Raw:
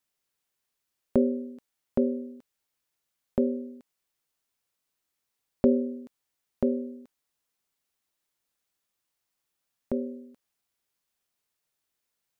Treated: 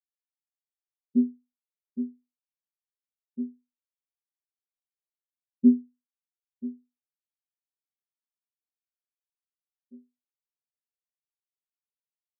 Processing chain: low-pass that closes with the level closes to 460 Hz; spectral contrast expander 4:1

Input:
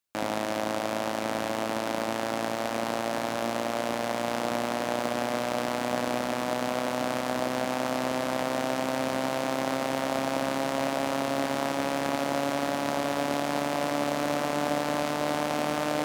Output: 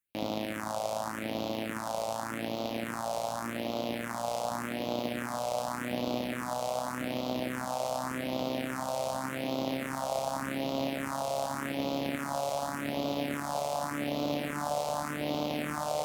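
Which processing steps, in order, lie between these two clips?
phase shifter stages 4, 0.86 Hz, lowest notch 280–1700 Hz; trim -1.5 dB

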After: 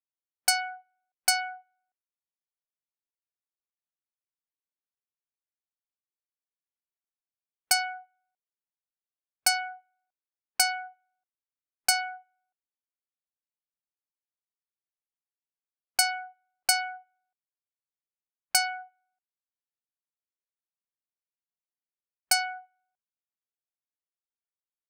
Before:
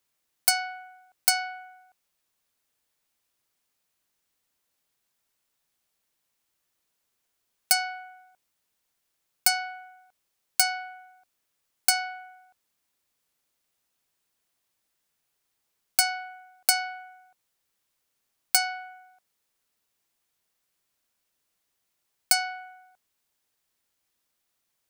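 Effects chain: spectral noise reduction 25 dB; level-controlled noise filter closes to 1.8 kHz, open at -22.5 dBFS

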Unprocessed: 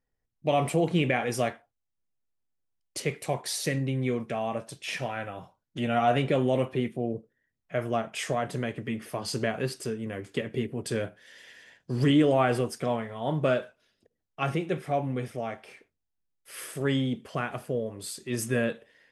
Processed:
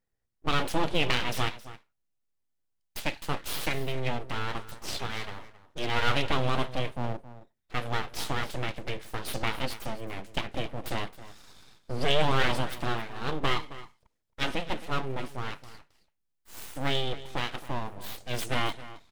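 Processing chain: full-wave rectifier; delay 269 ms -15.5 dB; dynamic bell 3.5 kHz, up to +7 dB, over -51 dBFS, Q 1.4

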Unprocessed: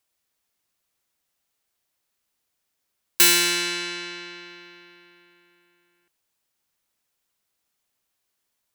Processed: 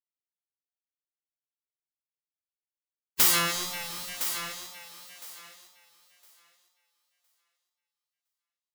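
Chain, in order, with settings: tracing distortion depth 0.15 ms; wow and flutter 42 cents; in parallel at +2 dB: compression 8:1, threshold -32 dBFS, peak gain reduction 17.5 dB; on the sum: harmonic tremolo 2.9 Hz, depth 70%, crossover 1.9 kHz; bit crusher 6-bit; formant shift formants -6 st; spectral gate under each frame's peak -10 dB weak; thinning echo 1011 ms, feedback 19%, high-pass 350 Hz, level -10 dB

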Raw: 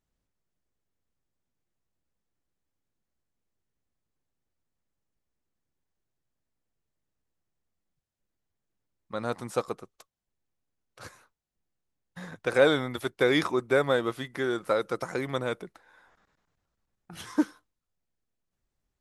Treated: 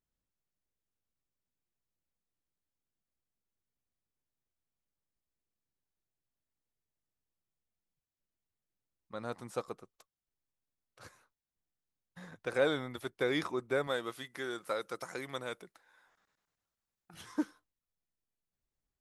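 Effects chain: 13.87–17.14 s: tilt EQ +2 dB/octave; trim -8.5 dB

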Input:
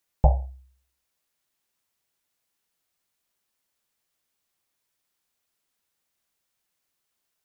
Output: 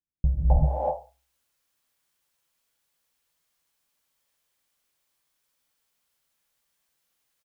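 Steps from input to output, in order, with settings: bands offset in time lows, highs 260 ms, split 300 Hz; gated-style reverb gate 410 ms rising, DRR -8 dB; trim -5.5 dB

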